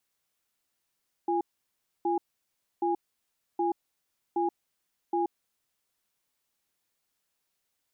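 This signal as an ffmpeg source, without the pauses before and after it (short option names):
-f lavfi -i "aevalsrc='0.0447*(sin(2*PI*345*t)+sin(2*PI*822*t))*clip(min(mod(t,0.77),0.13-mod(t,0.77))/0.005,0,1)':d=4.43:s=44100"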